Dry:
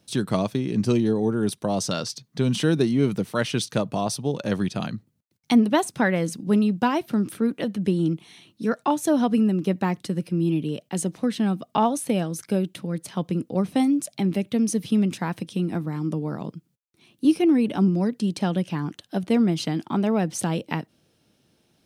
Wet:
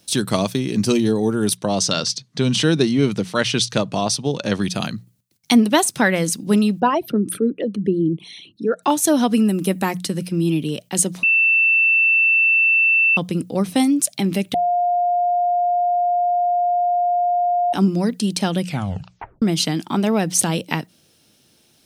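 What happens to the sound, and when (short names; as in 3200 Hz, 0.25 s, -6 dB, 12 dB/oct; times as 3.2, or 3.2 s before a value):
1.57–4.63 LPF 6300 Hz
6.8–8.83 formant sharpening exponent 2
9.48–9.98 resonant high shelf 7300 Hz +6.5 dB, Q 1.5
11.23–13.17 bleep 2670 Hz -21 dBFS
14.54–17.73 bleep 707 Hz -19.5 dBFS
18.61 tape stop 0.81 s
whole clip: high shelf 2800 Hz +11 dB; notches 60/120/180 Hz; gain +3.5 dB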